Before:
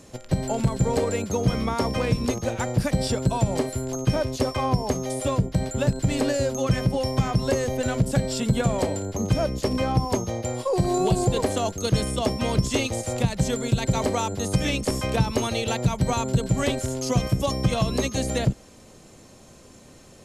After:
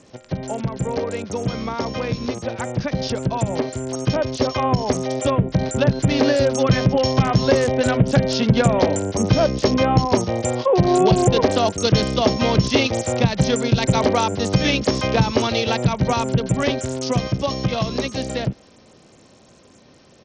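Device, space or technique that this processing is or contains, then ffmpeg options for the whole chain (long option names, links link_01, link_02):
Bluetooth headset: -af "highpass=frequency=120:poles=1,dynaudnorm=framelen=530:gausssize=17:maxgain=14dB,aresample=16000,aresample=44100" -ar 48000 -c:a sbc -b:a 64k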